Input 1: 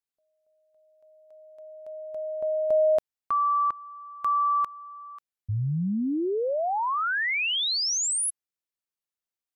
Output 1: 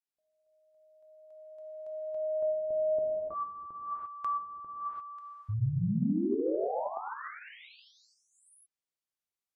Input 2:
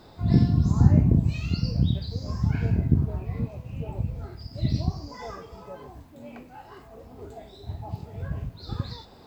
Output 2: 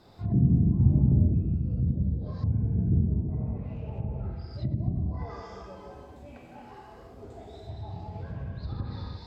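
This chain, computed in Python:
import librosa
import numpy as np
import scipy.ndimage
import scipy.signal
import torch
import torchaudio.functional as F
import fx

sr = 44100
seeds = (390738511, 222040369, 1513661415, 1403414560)

y = fx.rev_gated(x, sr, seeds[0], gate_ms=370, shape='flat', drr_db=-2.5)
y = fx.env_lowpass_down(y, sr, base_hz=400.0, full_db=-17.0)
y = y * librosa.db_to_amplitude(-7.0)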